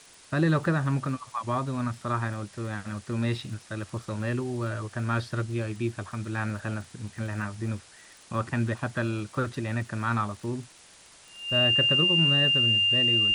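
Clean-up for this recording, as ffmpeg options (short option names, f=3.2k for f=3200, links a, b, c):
-af "adeclick=t=4,bandreject=f=2.8k:w=30,afftdn=nr=19:nf=-52"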